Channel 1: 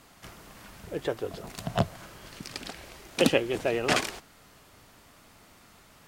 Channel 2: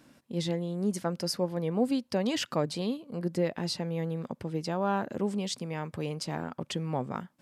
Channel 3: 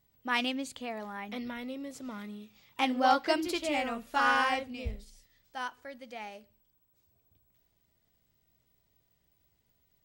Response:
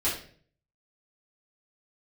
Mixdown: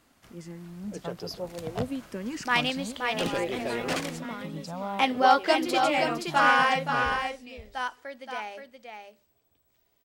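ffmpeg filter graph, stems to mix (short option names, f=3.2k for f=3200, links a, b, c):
-filter_complex "[0:a]volume=20.5dB,asoftclip=hard,volume=-20.5dB,volume=-9.5dB[a];[1:a]asplit=2[b][c];[c]afreqshift=-0.54[d];[b][d]amix=inputs=2:normalize=1,volume=-8.5dB[e];[2:a]bass=f=250:g=-10,treble=f=4k:g=-3,bandreject=f=50:t=h:w=6,bandreject=f=100:t=h:w=6,bandreject=f=150:t=h:w=6,bandreject=f=200:t=h:w=6,adelay=2200,volume=0.5dB,asplit=2[f][g];[g]volume=-6dB,aecho=0:1:524:1[h];[a][e][f][h]amix=inputs=4:normalize=0,dynaudnorm=f=170:g=13:m=5dB"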